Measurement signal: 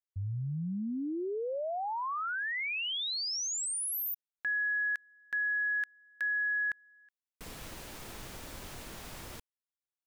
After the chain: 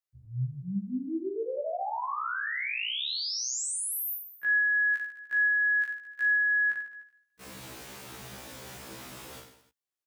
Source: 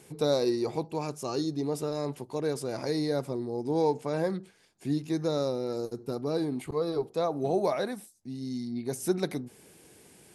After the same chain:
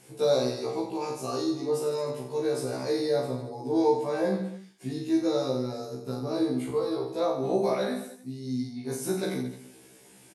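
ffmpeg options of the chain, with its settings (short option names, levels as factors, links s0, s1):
-af "highpass=100,aecho=1:1:40|88|145.6|214.7|297.7:0.631|0.398|0.251|0.158|0.1,afftfilt=real='re*1.73*eq(mod(b,3),0)':imag='im*1.73*eq(mod(b,3),0)':win_size=2048:overlap=0.75,volume=1.26"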